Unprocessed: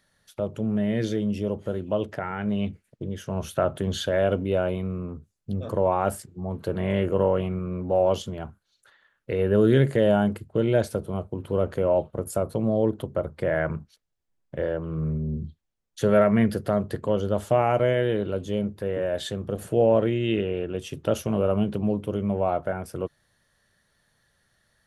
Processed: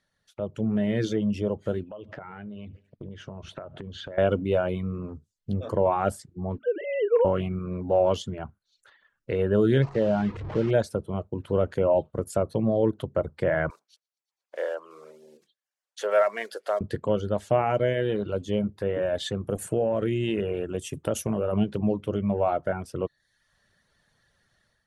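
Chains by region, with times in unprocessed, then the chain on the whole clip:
1.83–4.18 s: low-pass 3.8 kHz + feedback delay 72 ms, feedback 53%, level -21 dB + compression 8:1, threshold -36 dBFS
6.58–7.25 s: formants replaced by sine waves + hum notches 50/100/150/200/250 Hz
9.82–10.71 s: one-bit delta coder 64 kbps, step -25 dBFS + tape spacing loss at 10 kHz 31 dB
13.70–16.81 s: block-companded coder 7-bit + high-pass 510 Hz 24 dB/octave + feedback echo behind a high-pass 117 ms, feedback 75%, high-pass 4.1 kHz, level -22 dB
19.44–21.53 s: resonant high shelf 6.3 kHz +9.5 dB, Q 1.5 + compression 4:1, threshold -21 dBFS
whole clip: low-pass 8.1 kHz 12 dB/octave; reverb removal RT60 0.57 s; level rider gain up to 9 dB; trim -7.5 dB

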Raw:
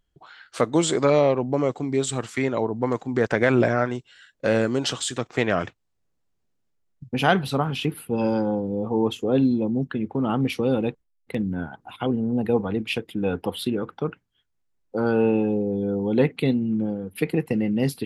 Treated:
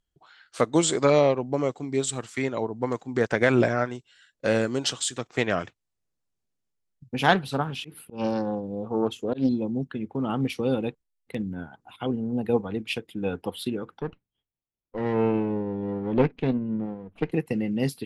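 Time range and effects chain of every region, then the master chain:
7.19–9.49 s: slow attack 121 ms + loudspeaker Doppler distortion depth 0.26 ms
14.01–17.32 s: comb filter that takes the minimum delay 0.31 ms + low-pass 2.1 kHz
whole clip: low-pass 11 kHz; treble shelf 4.3 kHz +7 dB; upward expansion 1.5:1, over -31 dBFS

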